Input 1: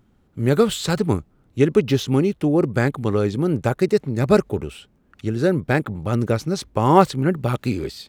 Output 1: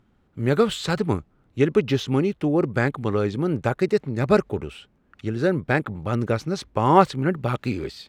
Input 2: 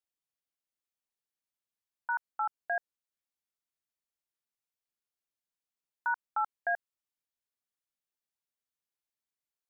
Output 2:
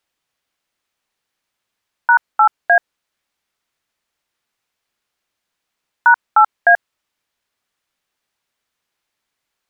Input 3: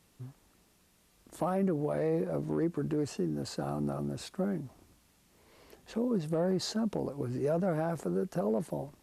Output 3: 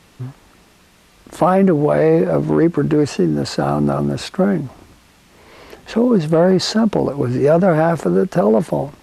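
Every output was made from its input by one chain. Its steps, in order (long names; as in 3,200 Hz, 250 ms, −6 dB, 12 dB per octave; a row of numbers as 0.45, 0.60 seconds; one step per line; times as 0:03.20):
low-pass filter 1,600 Hz 6 dB per octave
tilt shelving filter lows −5 dB, about 1,100 Hz
normalise the peak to −2 dBFS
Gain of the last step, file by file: +1.5, +22.0, +21.0 decibels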